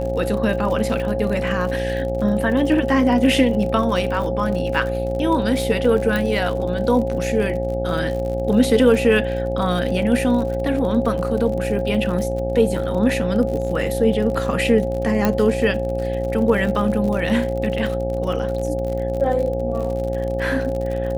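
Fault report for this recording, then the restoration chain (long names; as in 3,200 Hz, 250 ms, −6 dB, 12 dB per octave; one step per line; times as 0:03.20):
mains buzz 60 Hz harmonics 14 −26 dBFS
surface crackle 59 per second −27 dBFS
whistle 540 Hz −24 dBFS
0:06.16: click
0:15.25: click −5 dBFS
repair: click removal
hum removal 60 Hz, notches 14
notch filter 540 Hz, Q 30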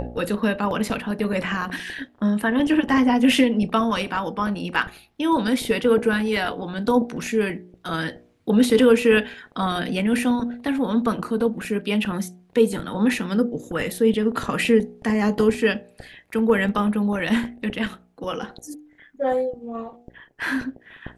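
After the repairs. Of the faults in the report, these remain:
none of them is left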